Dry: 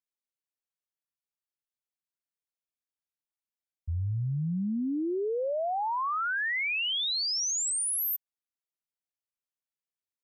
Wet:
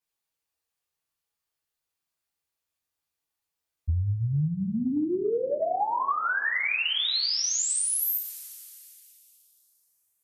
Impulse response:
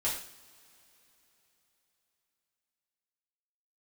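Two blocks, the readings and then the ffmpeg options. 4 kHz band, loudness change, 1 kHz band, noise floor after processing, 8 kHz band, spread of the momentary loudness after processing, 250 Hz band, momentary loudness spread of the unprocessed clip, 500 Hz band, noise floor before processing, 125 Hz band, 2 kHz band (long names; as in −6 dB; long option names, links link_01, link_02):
+2.5 dB, +3.0 dB, +3.0 dB, below −85 dBFS, +3.0 dB, 12 LU, +2.5 dB, 6 LU, +3.0 dB, below −85 dBFS, +4.0 dB, +3.0 dB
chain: -filter_complex "[1:a]atrim=start_sample=2205,asetrate=57330,aresample=44100[link_01];[0:a][link_01]afir=irnorm=-1:irlink=0,acompressor=threshold=-30dB:ratio=6,volume=6dB"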